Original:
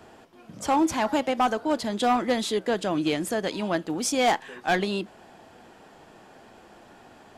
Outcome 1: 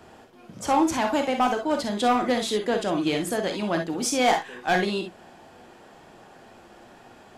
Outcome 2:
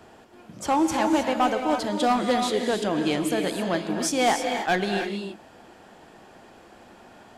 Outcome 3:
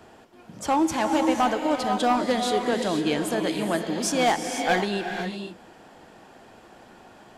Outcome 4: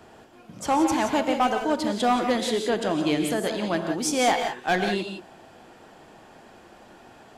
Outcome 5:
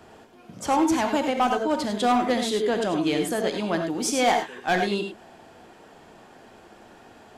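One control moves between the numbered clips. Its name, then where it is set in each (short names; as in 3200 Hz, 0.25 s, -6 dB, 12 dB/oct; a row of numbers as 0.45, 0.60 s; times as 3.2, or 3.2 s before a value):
non-linear reverb, gate: 80, 340, 530, 200, 120 ms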